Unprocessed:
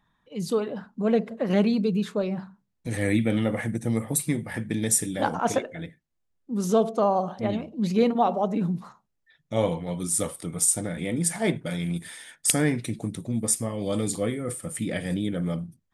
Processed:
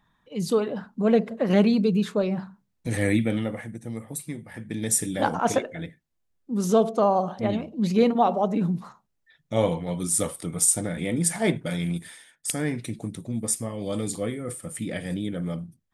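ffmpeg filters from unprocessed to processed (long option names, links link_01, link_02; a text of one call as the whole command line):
ffmpeg -i in.wav -af "volume=21.5dB,afade=type=out:start_time=2.98:duration=0.68:silence=0.281838,afade=type=in:start_time=4.54:duration=0.6:silence=0.316228,afade=type=out:start_time=11.87:duration=0.45:silence=0.237137,afade=type=in:start_time=12.32:duration=0.5:silence=0.354813" out.wav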